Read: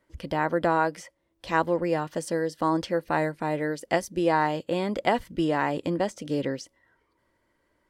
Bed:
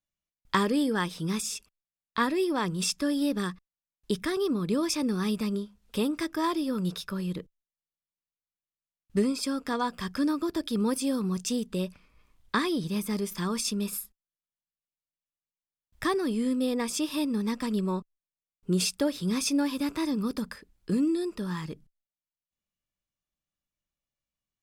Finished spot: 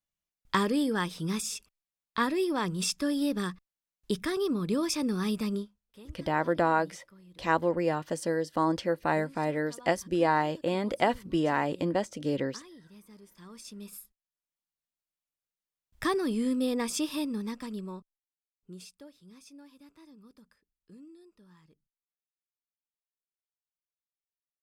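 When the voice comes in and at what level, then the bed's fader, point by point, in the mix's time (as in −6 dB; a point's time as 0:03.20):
5.95 s, −2.0 dB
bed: 0:05.61 −1.5 dB
0:05.84 −23 dB
0:13.25 −23 dB
0:14.56 −1 dB
0:17.01 −1 dB
0:19.23 −25.5 dB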